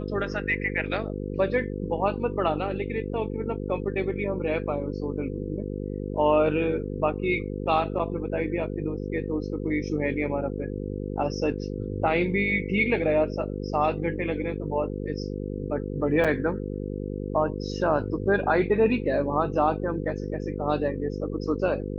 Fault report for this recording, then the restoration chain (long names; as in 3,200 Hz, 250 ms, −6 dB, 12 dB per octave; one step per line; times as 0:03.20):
mains buzz 50 Hz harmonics 10 −32 dBFS
0:16.24–0:16.25: drop-out 6.1 ms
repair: hum removal 50 Hz, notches 10
repair the gap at 0:16.24, 6.1 ms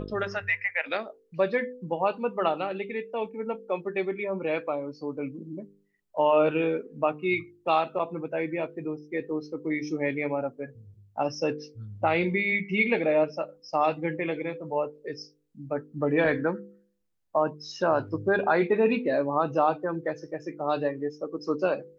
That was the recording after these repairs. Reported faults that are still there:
none of them is left